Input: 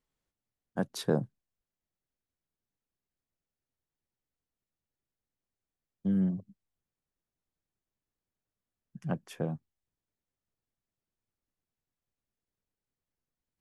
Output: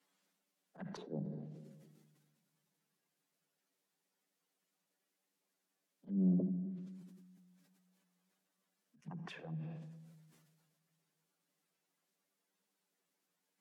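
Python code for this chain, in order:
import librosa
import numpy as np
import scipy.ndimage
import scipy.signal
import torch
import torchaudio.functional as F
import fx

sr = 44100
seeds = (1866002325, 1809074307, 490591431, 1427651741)

y = fx.spec_quant(x, sr, step_db=15)
y = fx.auto_swell(y, sr, attack_ms=689.0)
y = scipy.signal.sosfilt(scipy.signal.butter(16, 150.0, 'highpass', fs=sr, output='sos'), y)
y = fx.env_flanger(y, sr, rest_ms=10.7, full_db=-48.0)
y = fx.env_lowpass_down(y, sr, base_hz=550.0, full_db=-52.5)
y = fx.low_shelf(y, sr, hz=460.0, db=-8.5)
y = fx.rider(y, sr, range_db=3, speed_s=0.5)
y = fx.low_shelf(y, sr, hz=200.0, db=5.5)
y = fx.room_shoebox(y, sr, seeds[0], volume_m3=1900.0, walls='mixed', distance_m=0.34)
y = fx.sustainer(y, sr, db_per_s=34.0)
y = y * librosa.db_to_amplitude(10.0)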